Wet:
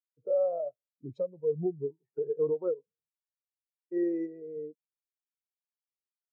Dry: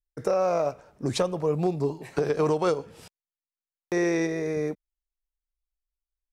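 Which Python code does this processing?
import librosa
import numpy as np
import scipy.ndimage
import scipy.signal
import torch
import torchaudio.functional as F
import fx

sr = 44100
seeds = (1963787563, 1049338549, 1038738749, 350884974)

y = fx.spectral_expand(x, sr, expansion=2.5)
y = y * librosa.db_to_amplitude(-7.0)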